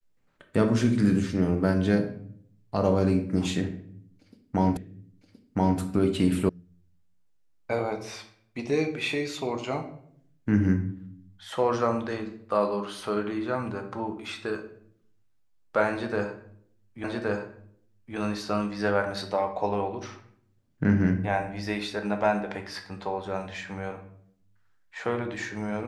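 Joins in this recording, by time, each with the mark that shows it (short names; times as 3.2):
4.77 repeat of the last 1.02 s
6.49 sound cut off
17.04 repeat of the last 1.12 s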